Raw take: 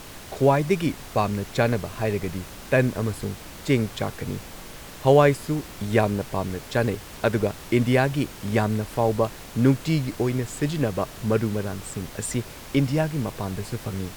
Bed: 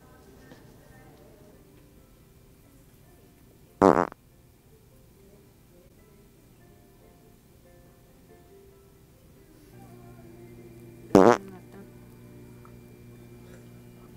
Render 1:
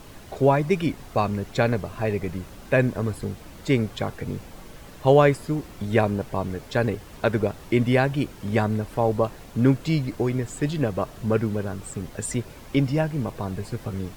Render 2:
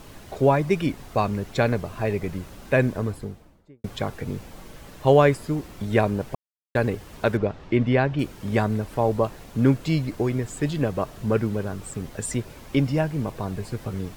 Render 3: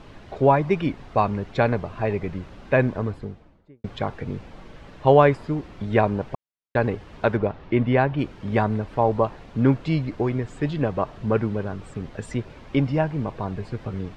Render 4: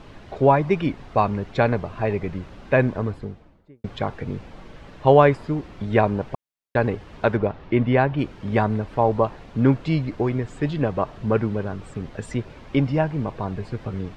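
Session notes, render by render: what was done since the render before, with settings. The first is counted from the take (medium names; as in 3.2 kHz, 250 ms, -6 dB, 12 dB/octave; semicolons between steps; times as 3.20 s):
noise reduction 8 dB, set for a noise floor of -41 dBFS
2.88–3.84 s: studio fade out; 6.35–6.75 s: mute; 7.37–8.19 s: distance through air 160 m
low-pass 3.5 kHz 12 dB/octave; dynamic bell 900 Hz, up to +5 dB, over -36 dBFS, Q 1.8
trim +1 dB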